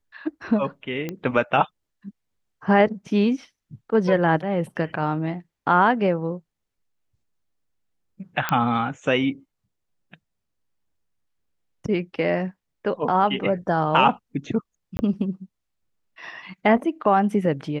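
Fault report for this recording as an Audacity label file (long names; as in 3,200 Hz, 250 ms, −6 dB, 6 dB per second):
1.090000	1.090000	click −16 dBFS
8.490000	8.490000	click −8 dBFS
14.970000	14.990000	drop-out 20 ms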